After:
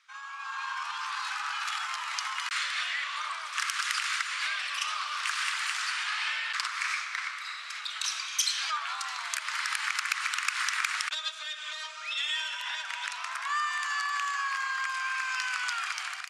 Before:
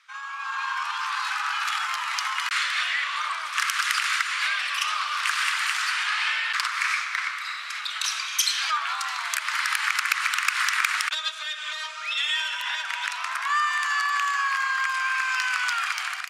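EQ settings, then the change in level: Bessel low-pass 8200 Hz, order 4; low shelf 500 Hz +11.5 dB; high shelf 4000 Hz +9.5 dB; -9.0 dB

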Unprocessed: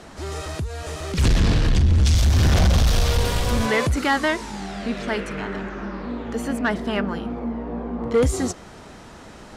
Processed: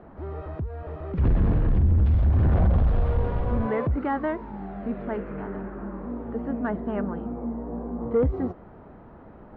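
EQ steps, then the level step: LPF 1100 Hz 12 dB/oct; air absorption 230 m; -3.0 dB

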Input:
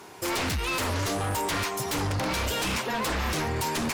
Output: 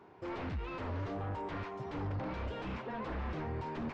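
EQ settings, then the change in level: tape spacing loss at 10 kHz 45 dB; -7.5 dB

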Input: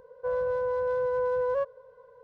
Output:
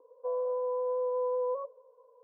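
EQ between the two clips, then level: Chebyshev band-pass 280–1200 Hz, order 5; notch 560 Hz, Q 16; dynamic EQ 690 Hz, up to +7 dB, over -45 dBFS, Q 1.9; -5.0 dB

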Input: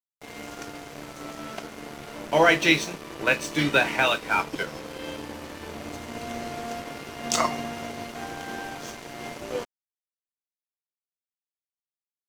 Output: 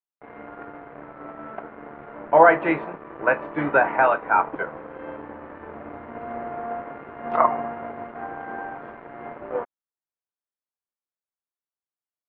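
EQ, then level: dynamic EQ 820 Hz, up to +7 dB, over -37 dBFS, Q 1; inverse Chebyshev low-pass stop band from 6800 Hz, stop band 70 dB; low shelf 270 Hz -9 dB; +2.5 dB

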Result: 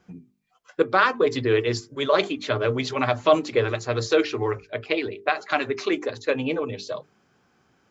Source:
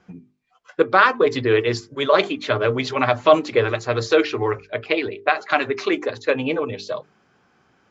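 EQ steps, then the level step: low shelf 470 Hz +5 dB; high shelf 5600 Hz +11 dB; notches 50/100/150/200 Hz; -6.0 dB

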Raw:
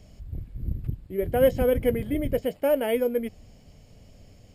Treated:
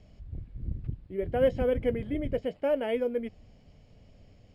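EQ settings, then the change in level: LPF 4300 Hz 12 dB/oct; -4.5 dB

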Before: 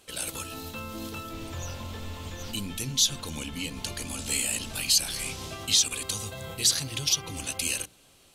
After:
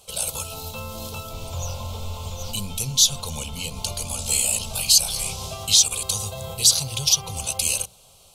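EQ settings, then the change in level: fixed phaser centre 730 Hz, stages 4; +8.0 dB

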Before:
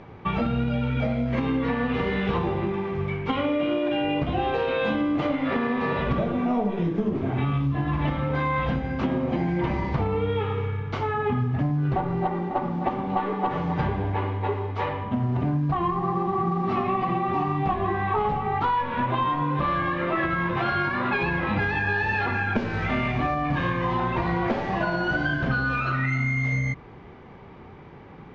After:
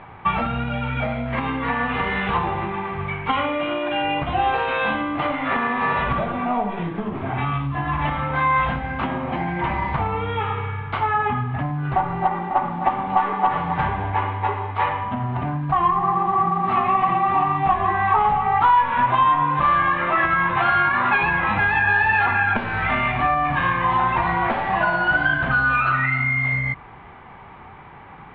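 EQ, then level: air absorption 280 m; low shelf 140 Hz +6 dB; band shelf 1700 Hz +14 dB 2.9 oct; -4.0 dB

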